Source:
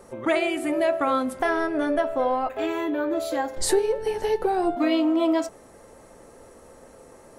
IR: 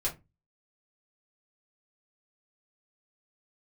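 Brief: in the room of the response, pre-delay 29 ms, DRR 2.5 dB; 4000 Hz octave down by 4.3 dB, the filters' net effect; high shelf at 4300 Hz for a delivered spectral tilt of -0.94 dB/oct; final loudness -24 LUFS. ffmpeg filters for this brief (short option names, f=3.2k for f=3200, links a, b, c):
-filter_complex "[0:a]equalizer=f=4k:t=o:g=-4,highshelf=f=4.3k:g=-3.5,asplit=2[a][b];[1:a]atrim=start_sample=2205,adelay=29[c];[b][c]afir=irnorm=-1:irlink=0,volume=-7.5dB[d];[a][d]amix=inputs=2:normalize=0,volume=-1.5dB"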